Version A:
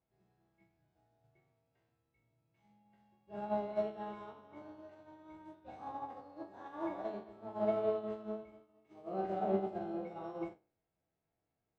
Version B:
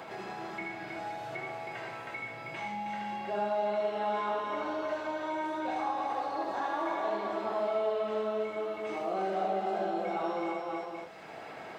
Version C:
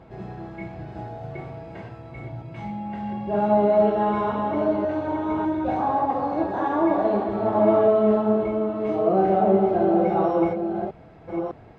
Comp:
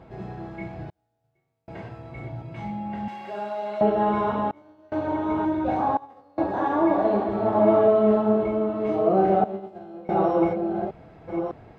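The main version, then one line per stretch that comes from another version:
C
0:00.90–0:01.68: punch in from A
0:03.08–0:03.81: punch in from B
0:04.51–0:04.92: punch in from A
0:05.97–0:06.38: punch in from A
0:09.44–0:10.09: punch in from A

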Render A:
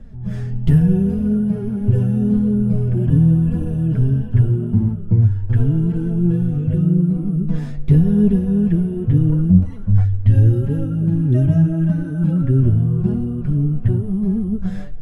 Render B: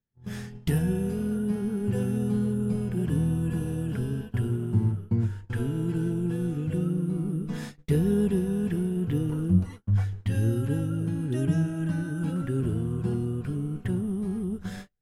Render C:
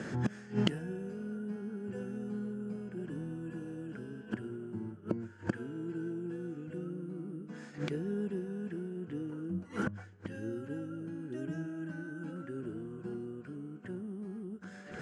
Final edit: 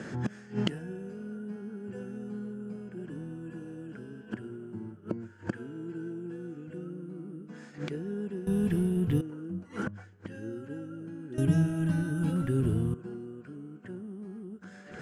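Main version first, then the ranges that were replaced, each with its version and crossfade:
C
0:08.47–0:09.21: punch in from B
0:11.38–0:12.94: punch in from B
not used: A

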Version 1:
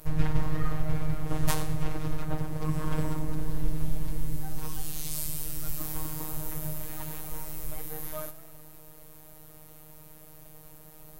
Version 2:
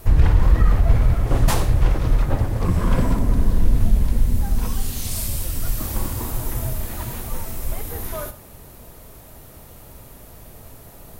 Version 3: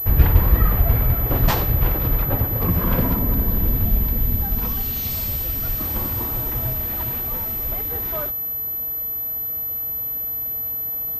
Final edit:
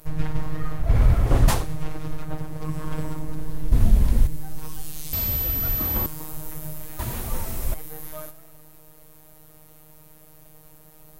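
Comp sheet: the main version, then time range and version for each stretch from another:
1
0:00.88–0:01.59: punch in from 2, crossfade 0.24 s
0:03.72–0:04.27: punch in from 2
0:05.13–0:06.06: punch in from 3
0:06.99–0:07.74: punch in from 2

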